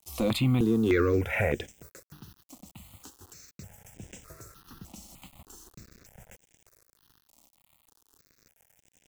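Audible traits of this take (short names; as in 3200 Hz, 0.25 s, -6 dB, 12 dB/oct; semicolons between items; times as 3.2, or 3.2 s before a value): a quantiser's noise floor 8-bit, dither none; notches that jump at a steady rate 3.3 Hz 430–4300 Hz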